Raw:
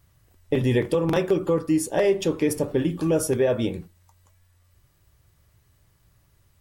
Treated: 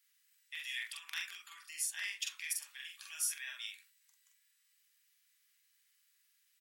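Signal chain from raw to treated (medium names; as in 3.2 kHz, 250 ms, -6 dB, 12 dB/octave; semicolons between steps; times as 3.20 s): inverse Chebyshev high-pass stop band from 540 Hz, stop band 60 dB; doubling 45 ms -3 dB; trim -5.5 dB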